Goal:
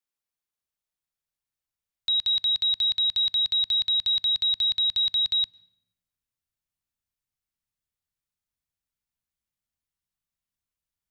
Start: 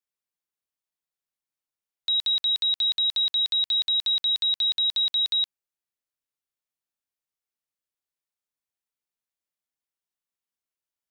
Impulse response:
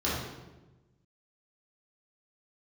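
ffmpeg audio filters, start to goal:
-filter_complex "[0:a]asubboost=boost=6:cutoff=160,asplit=2[s0][s1];[1:a]atrim=start_sample=2205,asetrate=61740,aresample=44100,adelay=97[s2];[s1][s2]afir=irnorm=-1:irlink=0,volume=0.0266[s3];[s0][s3]amix=inputs=2:normalize=0"

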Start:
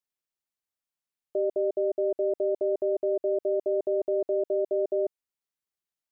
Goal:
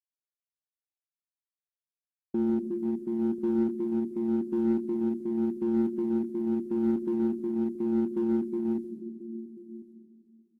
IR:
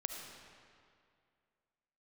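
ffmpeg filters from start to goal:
-filter_complex "[0:a]asetrate=25442,aresample=44100,aphaser=in_gain=1:out_gain=1:delay=1.3:decay=0.29:speed=0.86:type=triangular,aemphasis=mode=production:type=75fm,bandreject=f=71.53:t=h:w=4,bandreject=f=143.06:t=h:w=4,bandreject=f=214.59:t=h:w=4,bandreject=f=286.12:t=h:w=4,bandreject=f=357.65:t=h:w=4,bandreject=f=429.18:t=h:w=4,bandreject=f=500.71:t=h:w=4,bandreject=f=572.24:t=h:w=4,bandreject=f=643.77:t=h:w=4,bandreject=f=715.3:t=h:w=4,bandreject=f=786.83:t=h:w=4,bandreject=f=858.36:t=h:w=4,bandreject=f=929.89:t=h:w=4,agate=range=0.0224:threshold=0.0141:ratio=3:detection=peak,asplit=2[s0][s1];[s1]aecho=0:1:1040:0.168[s2];[s0][s2]amix=inputs=2:normalize=0[s3];[1:a]atrim=start_sample=2205[s4];[s3][s4]afir=irnorm=-1:irlink=0,asplit=2[s5][s6];[s6]asoftclip=type=hard:threshold=0.0376,volume=0.668[s7];[s5][s7]amix=inputs=2:normalize=0,volume=0.708" -ar 32000 -c:a aac -b:a 64k

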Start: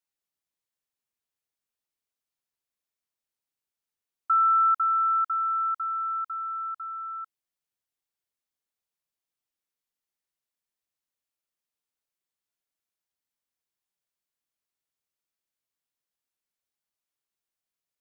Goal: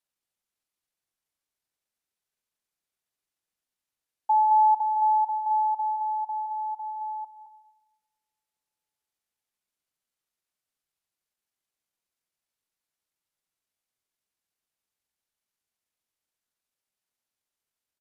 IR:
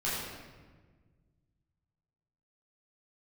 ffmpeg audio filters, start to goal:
-filter_complex "[0:a]asetrate=28595,aresample=44100,atempo=1.54221,aecho=1:1:218:0.422,asplit=2[s0][s1];[1:a]atrim=start_sample=2205[s2];[s1][s2]afir=irnorm=-1:irlink=0,volume=0.0891[s3];[s0][s3]amix=inputs=2:normalize=0"

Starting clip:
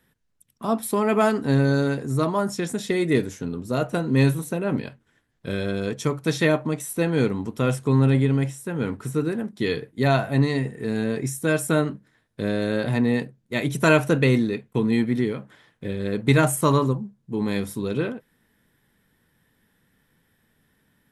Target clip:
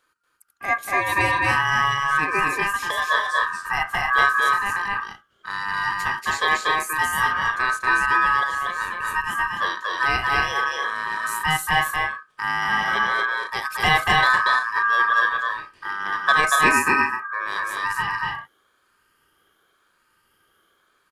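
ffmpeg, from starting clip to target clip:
-af "afftfilt=real='re*pow(10,11/40*sin(2*PI*(0.69*log(max(b,1)*sr/1024/100)/log(2)-(0.91)*(pts-256)/sr)))':imag='im*pow(10,11/40*sin(2*PI*(0.69*log(max(b,1)*sr/1024/100)/log(2)-(0.91)*(pts-256)/sr)))':win_size=1024:overlap=0.75,aeval=exprs='val(0)*sin(2*PI*1400*n/s)':c=same,aecho=1:1:236.2|271.1:0.794|0.447"

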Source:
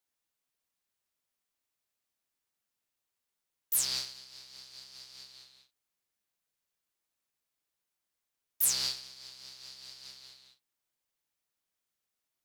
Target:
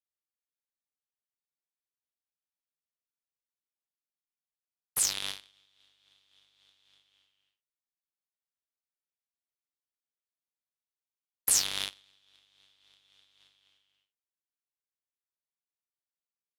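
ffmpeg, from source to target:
-af "aeval=exprs='0.224*(cos(1*acos(clip(val(0)/0.224,-1,1)))-cos(1*PI/2))+0.00891*(cos(5*acos(clip(val(0)/0.224,-1,1)))-cos(5*PI/2))+0.0355*(cos(7*acos(clip(val(0)/0.224,-1,1)))-cos(7*PI/2))':c=same,asetrate=33075,aresample=44100,volume=1.41"

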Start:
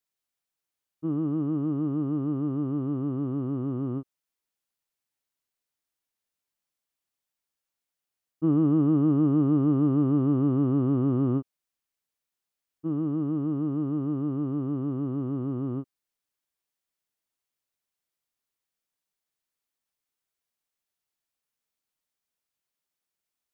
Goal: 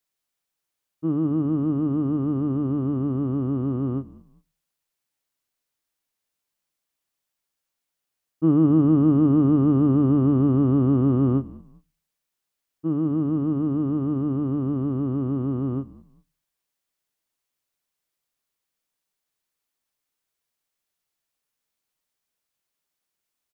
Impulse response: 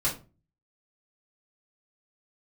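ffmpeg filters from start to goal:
-filter_complex "[0:a]asplit=3[s0][s1][s2];[s1]adelay=198,afreqshift=-51,volume=0.0944[s3];[s2]adelay=396,afreqshift=-102,volume=0.0302[s4];[s0][s3][s4]amix=inputs=3:normalize=0,asplit=2[s5][s6];[1:a]atrim=start_sample=2205[s7];[s6][s7]afir=irnorm=-1:irlink=0,volume=0.0447[s8];[s5][s8]amix=inputs=2:normalize=0,volume=1.58"

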